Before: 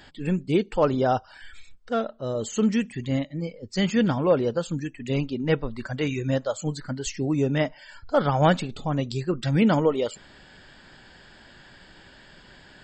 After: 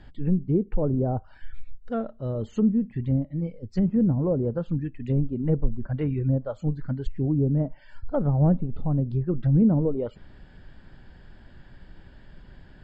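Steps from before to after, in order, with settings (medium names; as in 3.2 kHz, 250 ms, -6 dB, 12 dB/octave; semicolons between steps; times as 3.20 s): RIAA curve playback; low-pass that closes with the level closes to 560 Hz, closed at -12.5 dBFS; trim -6.5 dB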